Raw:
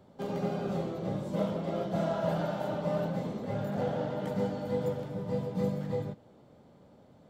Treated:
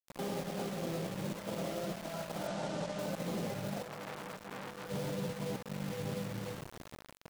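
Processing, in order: delay 529 ms -19.5 dB; reverberation RT60 0.95 s, pre-delay 6 ms, DRR 9.5 dB; compressor with a negative ratio -35 dBFS, ratio -0.5; peak limiter -32 dBFS, peak gain reduction 10.5 dB; bass shelf 110 Hz -7 dB; crossover distortion -58 dBFS; word length cut 8-bit, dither none; 2.47–2.99 s: low-pass 8.2 kHz 24 dB/octave; 3.82–4.89 s: transformer saturation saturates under 1.6 kHz; trim +4 dB

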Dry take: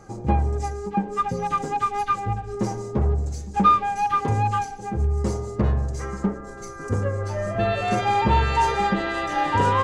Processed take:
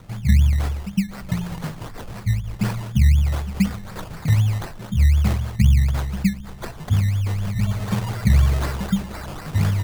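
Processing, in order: elliptic band-stop 180–4400 Hz; treble shelf 7.7 kHz +11.5 dB; decimation with a swept rate 18×, swing 60% 4 Hz; trim +8 dB

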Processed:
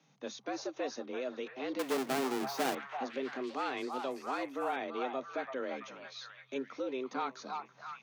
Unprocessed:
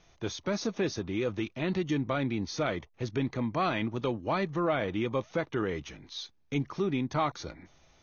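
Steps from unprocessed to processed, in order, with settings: 1.79–2.75 s: square wave that keeps the level; repeats whose band climbs or falls 335 ms, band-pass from 800 Hz, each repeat 0.7 oct, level -2 dB; frequency shift +130 Hz; trim -7.5 dB

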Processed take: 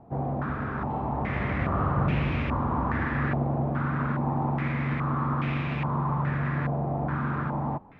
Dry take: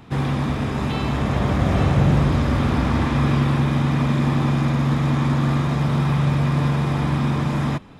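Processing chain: self-modulated delay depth 0.26 ms; step-sequenced low-pass 2.4 Hz 710–2500 Hz; trim -9 dB

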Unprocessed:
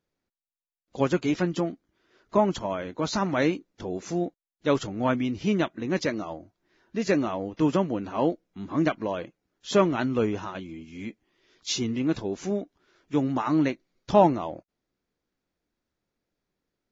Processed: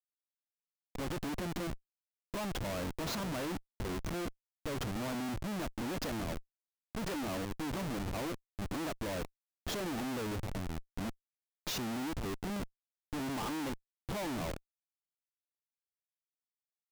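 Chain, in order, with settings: spectral selection erased 9.62–10.69 s, 900–2800 Hz; Schmitt trigger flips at -34 dBFS; trim -8.5 dB

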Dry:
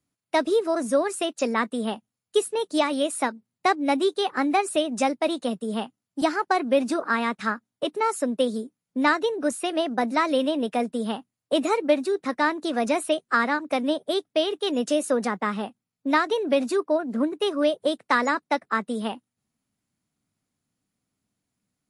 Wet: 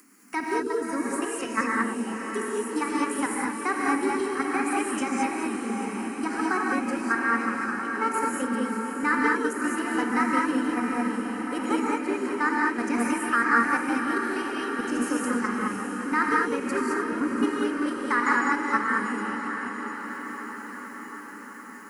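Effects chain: chunks repeated in reverse 182 ms, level -8 dB; steep high-pass 200 Hz 72 dB/octave; peaking EQ 9.6 kHz -2 dB 0.77 oct; level held to a coarse grid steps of 11 dB; static phaser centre 1.5 kHz, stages 4; upward compressor, threshold -35 dBFS; echo that smears into a reverb 656 ms, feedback 67%, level -8 dB; gated-style reverb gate 240 ms rising, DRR -2.5 dB; trim +1 dB

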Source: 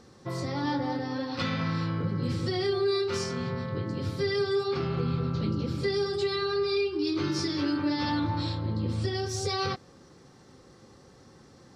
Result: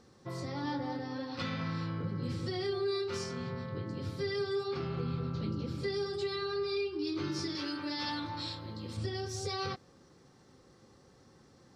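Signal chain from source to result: 7.55–8.97 s: tilt EQ +2.5 dB/octave; trim -6.5 dB

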